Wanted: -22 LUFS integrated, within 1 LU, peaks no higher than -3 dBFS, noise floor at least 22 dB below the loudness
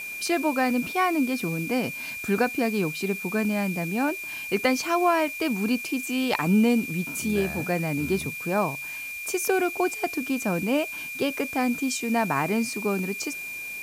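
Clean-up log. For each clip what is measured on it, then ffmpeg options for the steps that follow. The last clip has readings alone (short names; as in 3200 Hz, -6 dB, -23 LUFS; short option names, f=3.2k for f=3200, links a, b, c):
steady tone 2400 Hz; tone level -33 dBFS; noise floor -36 dBFS; noise floor target -48 dBFS; loudness -26.0 LUFS; peak -7.5 dBFS; loudness target -22.0 LUFS
-> -af "bandreject=f=2.4k:w=30"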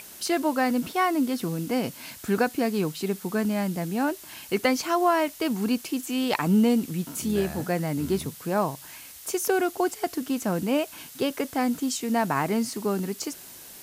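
steady tone none; noise floor -45 dBFS; noise floor target -49 dBFS
-> -af "afftdn=nr=6:nf=-45"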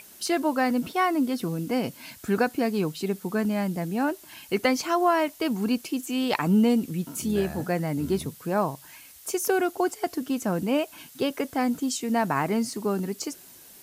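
noise floor -49 dBFS; loudness -26.5 LUFS; peak -8.0 dBFS; loudness target -22.0 LUFS
-> -af "volume=4.5dB"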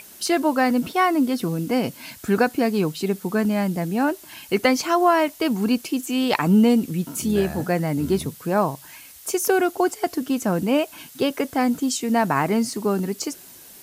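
loudness -22.0 LUFS; peak -3.5 dBFS; noise floor -45 dBFS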